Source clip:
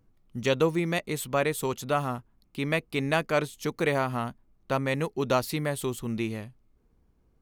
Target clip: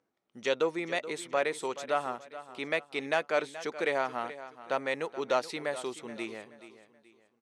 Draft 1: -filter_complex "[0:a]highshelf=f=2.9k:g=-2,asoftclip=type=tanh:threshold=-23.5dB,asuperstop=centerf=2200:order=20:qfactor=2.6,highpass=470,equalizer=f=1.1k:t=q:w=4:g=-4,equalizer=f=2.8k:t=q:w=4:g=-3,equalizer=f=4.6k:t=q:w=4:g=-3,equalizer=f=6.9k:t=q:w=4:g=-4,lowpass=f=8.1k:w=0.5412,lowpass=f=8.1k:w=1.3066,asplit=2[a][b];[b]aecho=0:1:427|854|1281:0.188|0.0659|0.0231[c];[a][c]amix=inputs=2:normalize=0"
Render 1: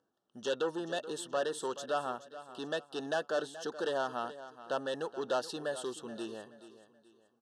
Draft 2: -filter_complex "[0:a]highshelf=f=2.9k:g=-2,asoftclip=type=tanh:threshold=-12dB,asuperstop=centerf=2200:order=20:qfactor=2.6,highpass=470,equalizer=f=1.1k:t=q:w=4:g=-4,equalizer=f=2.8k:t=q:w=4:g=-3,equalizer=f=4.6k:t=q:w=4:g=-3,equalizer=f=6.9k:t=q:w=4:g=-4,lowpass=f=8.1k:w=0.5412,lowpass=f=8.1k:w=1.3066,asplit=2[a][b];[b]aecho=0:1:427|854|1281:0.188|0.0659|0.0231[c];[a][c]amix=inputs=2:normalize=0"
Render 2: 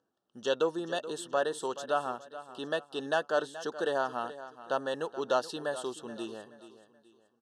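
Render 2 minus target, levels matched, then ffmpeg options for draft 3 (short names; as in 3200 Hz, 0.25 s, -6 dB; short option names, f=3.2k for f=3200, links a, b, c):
2000 Hz band -3.0 dB
-filter_complex "[0:a]highshelf=f=2.9k:g=-2,asoftclip=type=tanh:threshold=-12dB,highpass=470,equalizer=f=1.1k:t=q:w=4:g=-4,equalizer=f=2.8k:t=q:w=4:g=-3,equalizer=f=4.6k:t=q:w=4:g=-3,equalizer=f=6.9k:t=q:w=4:g=-4,lowpass=f=8.1k:w=0.5412,lowpass=f=8.1k:w=1.3066,asplit=2[a][b];[b]aecho=0:1:427|854|1281:0.188|0.0659|0.0231[c];[a][c]amix=inputs=2:normalize=0"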